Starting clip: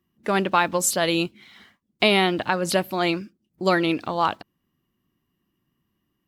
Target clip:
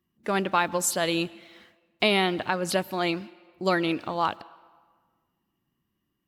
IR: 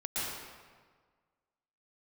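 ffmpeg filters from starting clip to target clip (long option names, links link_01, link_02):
-filter_complex "[0:a]asplit=2[link_01][link_02];[link_02]highpass=280[link_03];[1:a]atrim=start_sample=2205[link_04];[link_03][link_04]afir=irnorm=-1:irlink=0,volume=-26.5dB[link_05];[link_01][link_05]amix=inputs=2:normalize=0,volume=-4dB"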